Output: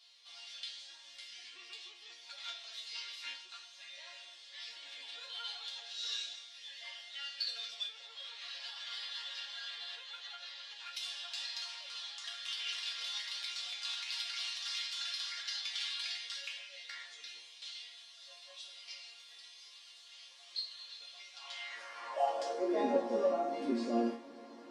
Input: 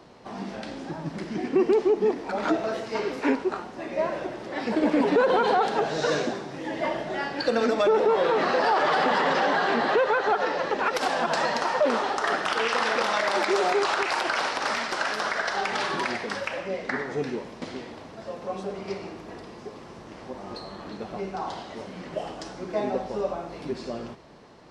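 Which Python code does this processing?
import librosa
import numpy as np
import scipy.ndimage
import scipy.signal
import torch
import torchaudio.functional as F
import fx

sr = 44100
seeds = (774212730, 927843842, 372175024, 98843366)

p1 = fx.peak_eq(x, sr, hz=550.0, db=6.0, octaves=0.42)
p2 = 10.0 ** (-26.0 / 20.0) * np.tanh(p1 / 10.0 ** (-26.0 / 20.0))
p3 = p1 + (p2 * 10.0 ** (-5.0 / 20.0))
p4 = fx.low_shelf(p3, sr, hz=140.0, db=-9.0)
p5 = fx.resonator_bank(p4, sr, root=58, chord='minor', decay_s=0.27)
p6 = fx.rider(p5, sr, range_db=4, speed_s=2.0)
p7 = fx.filter_sweep_highpass(p6, sr, from_hz=3500.0, to_hz=260.0, start_s=21.36, end_s=22.88, q=3.0)
y = p7 * 10.0 ** (4.5 / 20.0)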